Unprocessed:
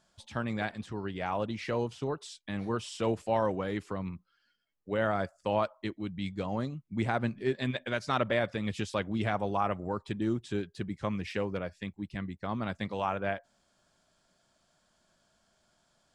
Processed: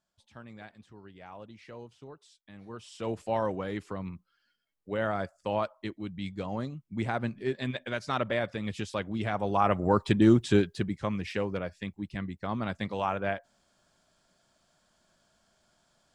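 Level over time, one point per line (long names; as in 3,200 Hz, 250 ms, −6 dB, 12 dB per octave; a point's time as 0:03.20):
0:02.58 −14 dB
0:03.22 −1 dB
0:09.29 −1 dB
0:09.95 +10.5 dB
0:10.56 +10.5 dB
0:11.04 +1.5 dB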